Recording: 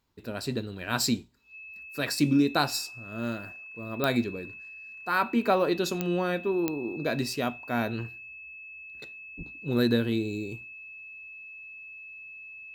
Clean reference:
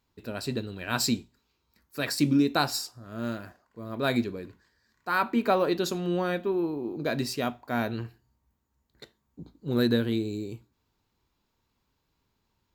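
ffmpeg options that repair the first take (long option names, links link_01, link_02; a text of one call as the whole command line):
ffmpeg -i in.wav -filter_complex "[0:a]adeclick=threshold=4,bandreject=frequency=2600:width=30,asplit=3[link_01][link_02][link_03];[link_01]afade=type=out:start_time=9.37:duration=0.02[link_04];[link_02]highpass=frequency=140:width=0.5412,highpass=frequency=140:width=1.3066,afade=type=in:start_time=9.37:duration=0.02,afade=type=out:start_time=9.49:duration=0.02[link_05];[link_03]afade=type=in:start_time=9.49:duration=0.02[link_06];[link_04][link_05][link_06]amix=inputs=3:normalize=0" out.wav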